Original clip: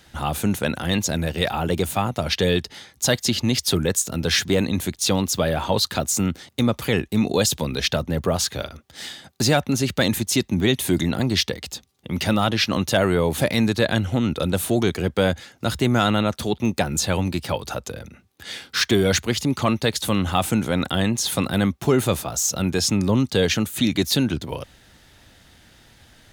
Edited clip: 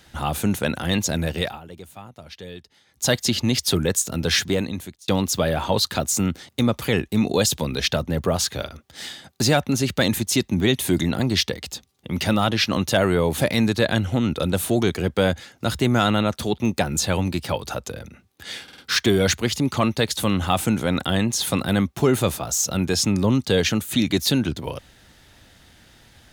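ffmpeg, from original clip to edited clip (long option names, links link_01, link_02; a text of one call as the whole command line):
ffmpeg -i in.wav -filter_complex "[0:a]asplit=7[link_01][link_02][link_03][link_04][link_05][link_06][link_07];[link_01]atrim=end=1.6,asetpts=PTS-STARTPTS,afade=type=out:start_time=1.36:duration=0.24:silence=0.125893[link_08];[link_02]atrim=start=1.6:end=2.85,asetpts=PTS-STARTPTS,volume=-18dB[link_09];[link_03]atrim=start=2.85:end=5.08,asetpts=PTS-STARTPTS,afade=type=in:duration=0.24:silence=0.125893,afade=type=out:start_time=1.53:duration=0.7[link_10];[link_04]atrim=start=5.08:end=18.682,asetpts=PTS-STARTPTS,afade=type=in:duration=0.004:curve=hsin[link_11];[link_05]atrim=start=18.628:end=18.682[link_12];[link_06]atrim=start=18.628:end=18.682[link_13];[link_07]atrim=start=18.628[link_14];[link_08][link_09][link_10][link_11]concat=n=4:v=0:a=1[link_15];[link_15][link_12]acrossfade=duration=0.004:curve1=hsin:curve2=hsin[link_16];[link_16][link_13]acrossfade=duration=0.004:curve1=hsin:curve2=hsin[link_17];[link_17][link_14]acrossfade=duration=0.004:curve1=hsin:curve2=hsin" out.wav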